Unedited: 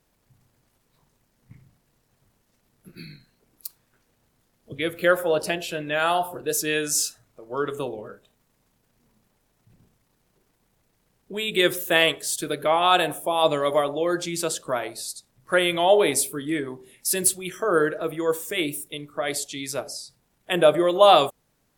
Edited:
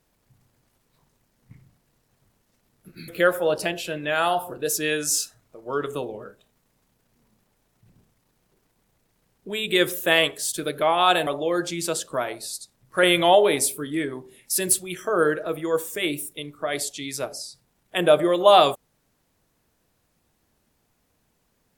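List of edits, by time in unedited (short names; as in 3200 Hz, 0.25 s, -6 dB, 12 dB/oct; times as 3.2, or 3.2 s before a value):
3.08–4.92 cut
13.11–13.82 cut
15.58–15.9 gain +4 dB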